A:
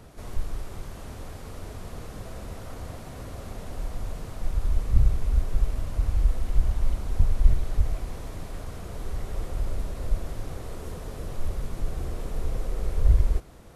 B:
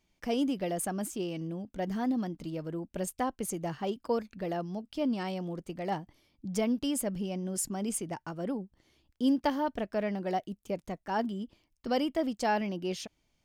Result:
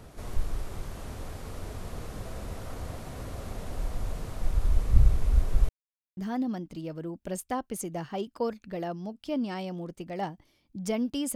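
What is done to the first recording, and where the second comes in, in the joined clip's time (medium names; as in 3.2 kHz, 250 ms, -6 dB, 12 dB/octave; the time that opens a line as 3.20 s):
A
5.69–6.17 s: mute
6.17 s: go over to B from 1.86 s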